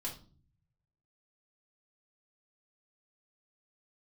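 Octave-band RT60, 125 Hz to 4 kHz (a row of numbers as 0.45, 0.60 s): 1.4, 0.75, 0.50, 0.35, 0.30, 0.35 s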